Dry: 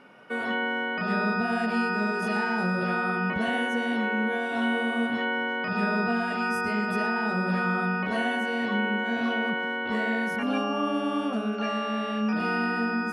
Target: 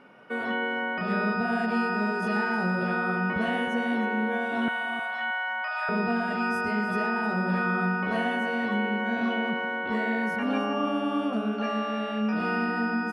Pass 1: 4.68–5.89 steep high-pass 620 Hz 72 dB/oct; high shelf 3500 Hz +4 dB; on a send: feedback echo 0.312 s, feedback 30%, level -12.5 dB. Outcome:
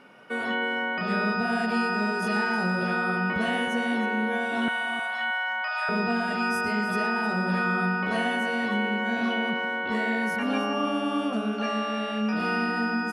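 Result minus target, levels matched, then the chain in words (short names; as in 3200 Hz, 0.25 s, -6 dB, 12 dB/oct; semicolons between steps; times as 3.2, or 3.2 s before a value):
8000 Hz band +8.0 dB
4.68–5.89 steep high-pass 620 Hz 72 dB/oct; high shelf 3500 Hz -6.5 dB; on a send: feedback echo 0.312 s, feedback 30%, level -12.5 dB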